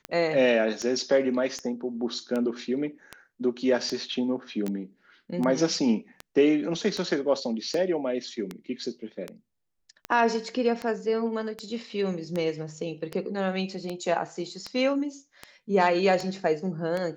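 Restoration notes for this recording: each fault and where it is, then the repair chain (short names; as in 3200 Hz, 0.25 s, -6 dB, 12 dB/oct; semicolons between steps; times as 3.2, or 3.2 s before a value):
tick 78 rpm -18 dBFS
4.68 pop -19 dBFS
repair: de-click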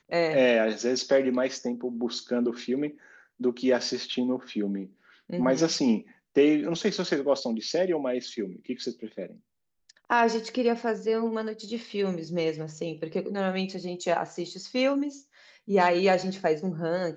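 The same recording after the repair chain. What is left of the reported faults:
none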